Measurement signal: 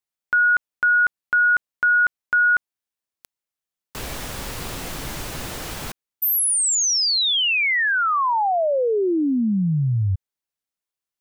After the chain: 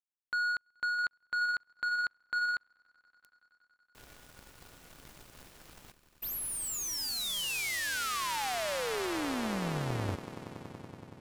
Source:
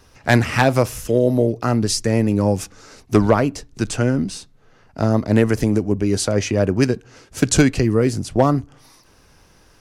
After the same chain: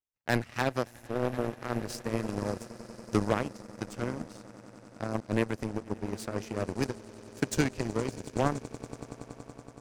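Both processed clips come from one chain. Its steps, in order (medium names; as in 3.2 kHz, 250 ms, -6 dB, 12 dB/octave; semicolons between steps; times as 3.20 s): echo with a slow build-up 94 ms, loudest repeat 8, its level -16.5 dB; power-law waveshaper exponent 2; trim -8.5 dB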